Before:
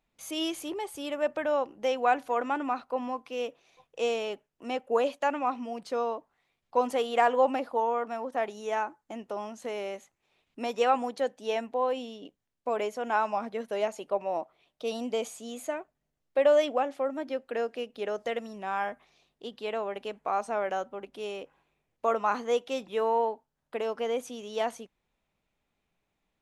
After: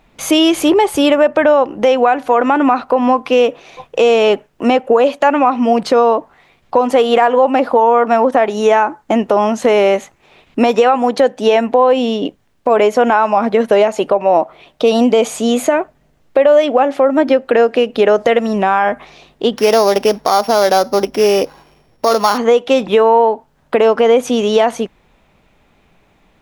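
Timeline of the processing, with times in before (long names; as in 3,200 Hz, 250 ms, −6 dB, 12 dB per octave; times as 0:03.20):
0:19.58–0:22.38: samples sorted by size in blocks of 8 samples
whole clip: high-shelf EQ 4,200 Hz −10 dB; downward compressor 6 to 1, threshold −34 dBFS; boost into a limiter +28 dB; level −1 dB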